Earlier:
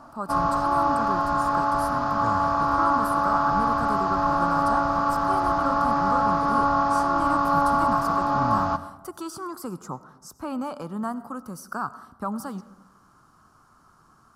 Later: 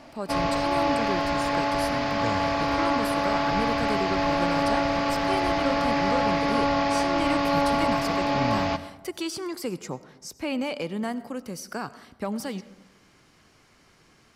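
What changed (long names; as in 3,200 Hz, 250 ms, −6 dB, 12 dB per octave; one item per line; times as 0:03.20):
second sound: send +7.0 dB
master: remove drawn EQ curve 220 Hz 0 dB, 490 Hz −7 dB, 1,300 Hz +11 dB, 2,100 Hz −19 dB, 10,000 Hz 0 dB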